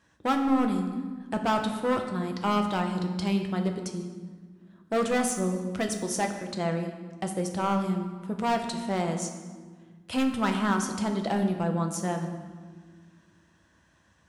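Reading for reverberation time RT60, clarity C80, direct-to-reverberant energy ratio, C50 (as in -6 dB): 1.6 s, 8.5 dB, 4.0 dB, 7.0 dB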